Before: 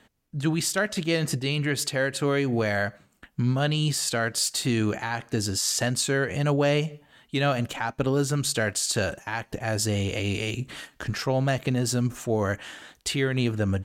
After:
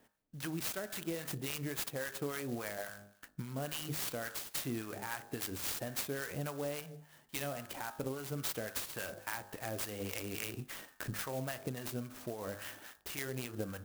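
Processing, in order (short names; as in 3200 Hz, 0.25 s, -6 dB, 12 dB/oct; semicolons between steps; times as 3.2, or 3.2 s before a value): low shelf 220 Hz -9 dB; de-hum 50.8 Hz, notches 36; compressor, threshold -31 dBFS, peak gain reduction 10.5 dB; harmonic tremolo 3.6 Hz, depth 70%, crossover 810 Hz; clock jitter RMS 0.061 ms; gain -2 dB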